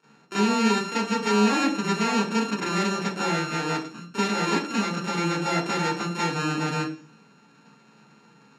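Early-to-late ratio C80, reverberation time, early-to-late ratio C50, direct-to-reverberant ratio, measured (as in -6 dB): 11.0 dB, 0.45 s, 4.0 dB, -13.0 dB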